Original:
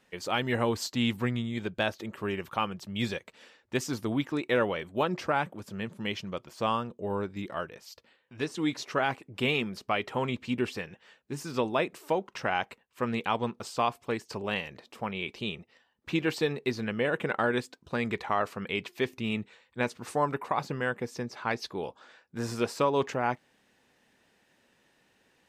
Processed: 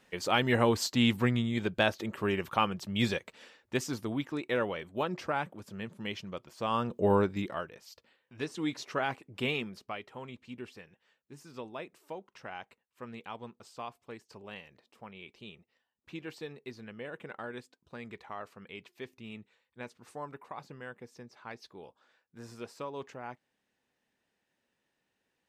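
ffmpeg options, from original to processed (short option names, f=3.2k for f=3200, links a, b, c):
-af "volume=14.5dB,afade=t=out:st=3.13:d=0.99:silence=0.473151,afade=t=in:st=6.69:d=0.35:silence=0.237137,afade=t=out:st=7.04:d=0.59:silence=0.251189,afade=t=out:st=9.46:d=0.6:silence=0.316228"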